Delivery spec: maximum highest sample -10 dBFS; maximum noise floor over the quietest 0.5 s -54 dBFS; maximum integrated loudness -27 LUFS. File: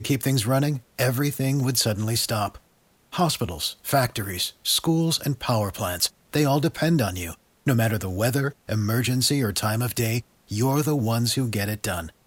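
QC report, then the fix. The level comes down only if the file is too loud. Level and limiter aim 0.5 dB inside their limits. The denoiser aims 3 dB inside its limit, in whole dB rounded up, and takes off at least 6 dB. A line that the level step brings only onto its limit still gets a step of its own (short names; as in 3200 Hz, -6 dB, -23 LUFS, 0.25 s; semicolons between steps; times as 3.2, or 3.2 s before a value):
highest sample -8.5 dBFS: fail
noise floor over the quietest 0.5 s -62 dBFS: OK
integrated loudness -24.0 LUFS: fail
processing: gain -3.5 dB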